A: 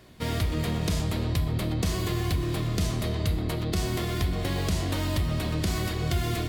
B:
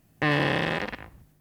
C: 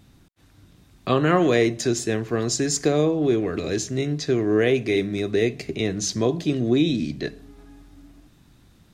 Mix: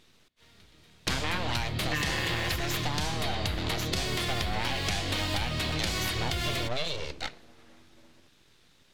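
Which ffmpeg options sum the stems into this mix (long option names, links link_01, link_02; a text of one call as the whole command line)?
ffmpeg -i stem1.wav -i stem2.wav -i stem3.wav -filter_complex "[0:a]adelay=200,volume=-3dB[link_01];[1:a]aecho=1:1:6:0.65,adelay=1700,volume=-10.5dB[link_02];[2:a]aeval=exprs='abs(val(0))':channel_layout=same,volume=-9dB,asplit=2[link_03][link_04];[link_04]apad=whole_len=294988[link_05];[link_01][link_05]sidechaingate=range=-33dB:threshold=-51dB:ratio=16:detection=peak[link_06];[link_06][link_02][link_03]amix=inputs=3:normalize=0,equalizer=frequency=3300:width=0.39:gain=12,acompressor=threshold=-26dB:ratio=6" out.wav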